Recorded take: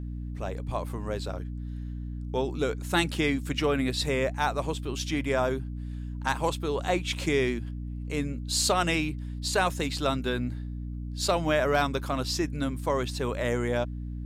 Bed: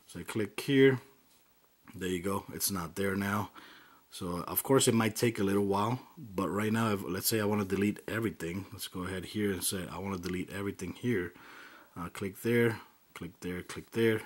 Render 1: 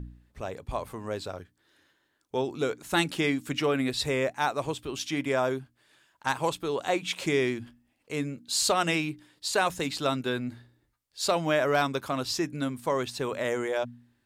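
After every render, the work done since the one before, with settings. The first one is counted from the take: de-hum 60 Hz, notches 5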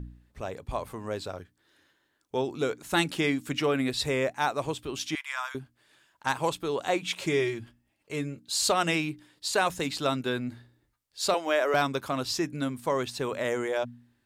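5.15–5.55 s: steep high-pass 970 Hz; 7.15–8.63 s: comb of notches 250 Hz; 11.34–11.74 s: high-pass 330 Hz 24 dB/octave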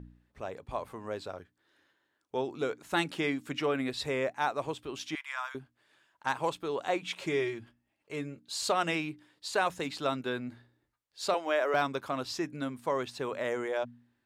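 low-pass 1.1 kHz 6 dB/octave; tilt EQ +2.5 dB/octave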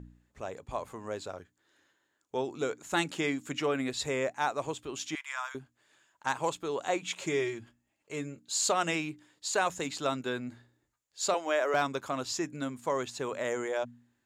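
peaking EQ 7 kHz +13 dB 0.3 oct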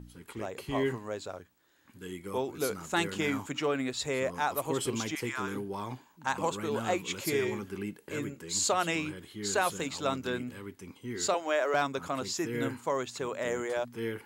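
add bed -7.5 dB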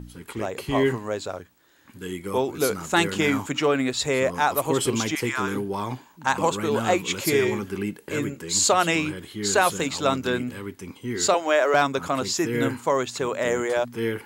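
trim +8.5 dB

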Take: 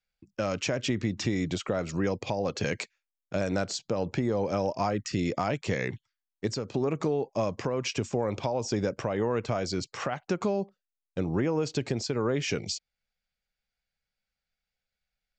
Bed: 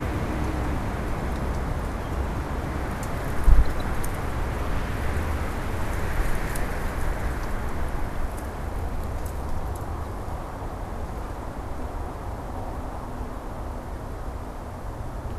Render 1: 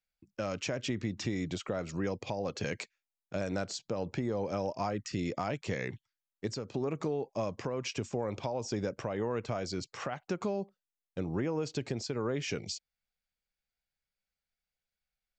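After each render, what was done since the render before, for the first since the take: trim -5.5 dB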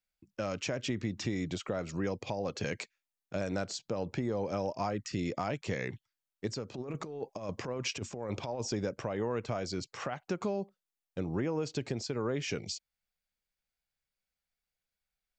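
6.71–8.73 s: compressor with a negative ratio -36 dBFS, ratio -0.5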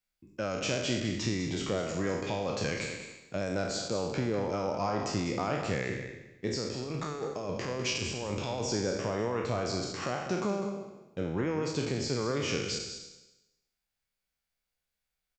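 spectral sustain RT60 0.98 s; on a send: delay 201 ms -9.5 dB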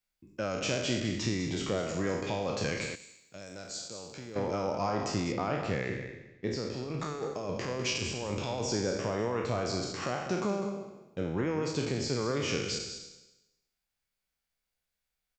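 2.95–4.36 s: pre-emphasis filter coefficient 0.8; 5.32–7.00 s: distance through air 98 m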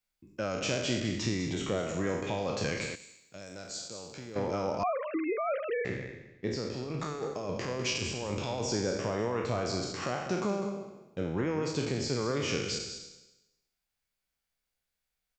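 1.53–2.38 s: peaking EQ 4.8 kHz -12 dB 0.22 oct; 4.83–5.85 s: formants replaced by sine waves

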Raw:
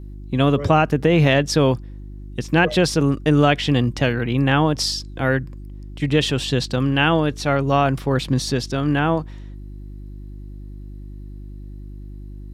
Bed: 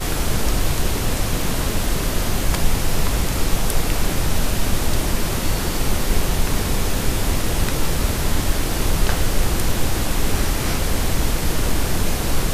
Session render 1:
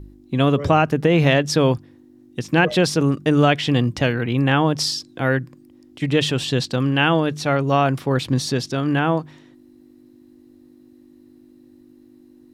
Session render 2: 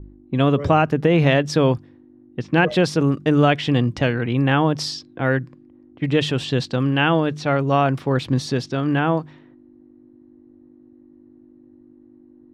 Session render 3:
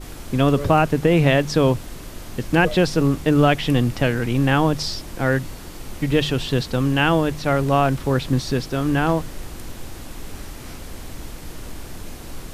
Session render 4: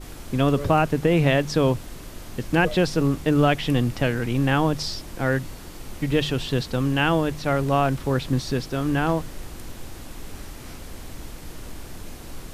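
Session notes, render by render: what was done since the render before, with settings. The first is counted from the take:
de-hum 50 Hz, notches 4
level-controlled noise filter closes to 1.1 kHz, open at -17.5 dBFS; low-pass 3.5 kHz 6 dB/octave
add bed -15 dB
trim -3 dB

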